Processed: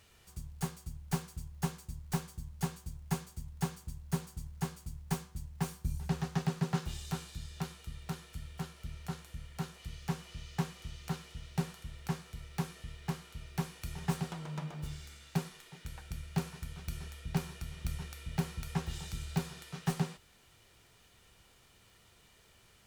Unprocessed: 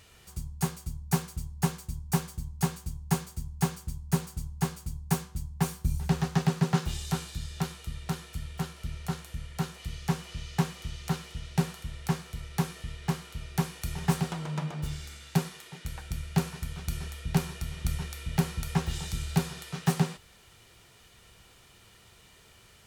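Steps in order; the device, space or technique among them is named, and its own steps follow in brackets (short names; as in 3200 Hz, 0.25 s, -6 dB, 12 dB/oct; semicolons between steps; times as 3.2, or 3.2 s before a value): record under a worn stylus (tracing distortion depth 0.074 ms; crackle; pink noise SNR 33 dB); gain -7 dB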